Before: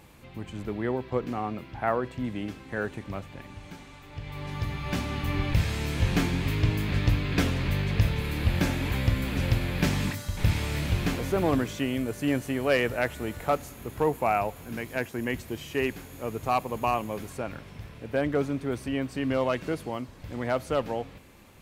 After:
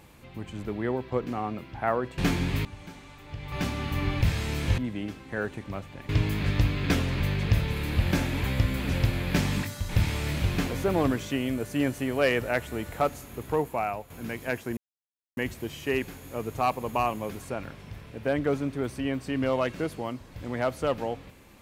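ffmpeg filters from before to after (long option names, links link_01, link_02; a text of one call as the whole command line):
ffmpeg -i in.wav -filter_complex "[0:a]asplit=8[link_01][link_02][link_03][link_04][link_05][link_06][link_07][link_08];[link_01]atrim=end=2.182[link_09];[link_02]atrim=start=6.098:end=6.572[link_10];[link_03]atrim=start=3.488:end=4.362[link_11];[link_04]atrim=start=4.838:end=6.102[link_12];[link_05]atrim=start=2.178:end=3.492[link_13];[link_06]atrim=start=6.568:end=14.58,asetpts=PTS-STARTPTS,afade=type=out:start_time=7.332:duration=0.68:silence=0.354813[link_14];[link_07]atrim=start=14.58:end=15.25,asetpts=PTS-STARTPTS,afade=type=in:duration=0.004:curve=hsin:silence=0.354813,afade=type=out:start_time=0.666:duration=0.004:curve=hsin,apad=pad_dur=0.6[link_15];[link_08]atrim=start=15.25,asetpts=PTS-STARTPTS,afade=type=in:duration=0.004:curve=hsin[link_16];[link_09][link_10]acrossfade=duration=0.004:curve1=hsin:curve2=hsin[link_17];[link_17][link_11]acrossfade=duration=0.004:curve1=hsin:curve2=hsin[link_18];[link_18][link_12]acrossfade=duration=0.004:curve1=hsin:curve2=hsin[link_19];[link_19][link_13]acrossfade=duration=0.004:curve1=hsin:curve2=hsin[link_20];[link_14][link_15][link_16]concat=n=3:v=0:a=1[link_21];[link_20][link_21]acrossfade=duration=0.004:curve1=hsin:curve2=hsin" out.wav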